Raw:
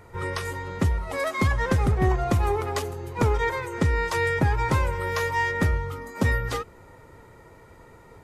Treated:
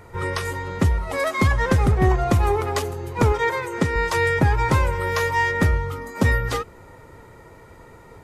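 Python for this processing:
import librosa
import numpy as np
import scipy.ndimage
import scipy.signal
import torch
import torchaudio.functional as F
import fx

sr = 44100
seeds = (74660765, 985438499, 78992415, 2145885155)

y = fx.highpass(x, sr, hz=130.0, slope=12, at=(3.32, 3.96))
y = F.gain(torch.from_numpy(y), 4.0).numpy()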